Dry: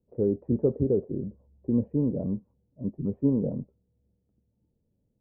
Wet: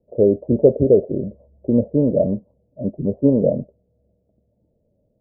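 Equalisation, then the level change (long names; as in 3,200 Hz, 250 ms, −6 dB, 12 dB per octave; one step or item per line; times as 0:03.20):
low-pass with resonance 620 Hz, resonance Q 7.3
+6.0 dB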